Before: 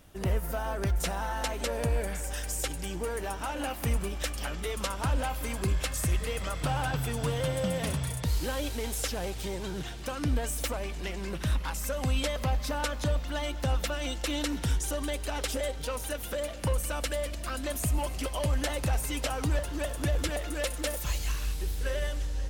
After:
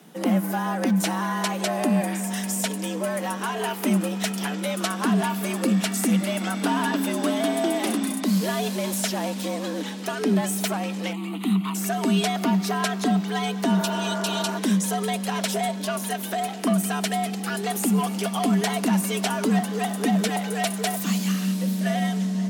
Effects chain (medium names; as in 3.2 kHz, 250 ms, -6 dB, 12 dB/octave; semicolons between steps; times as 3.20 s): 11.13–11.75 s: static phaser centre 1.5 kHz, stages 6; frequency shift +140 Hz; 13.79–14.55 s: spectral replace 240–2400 Hz before; trim +6 dB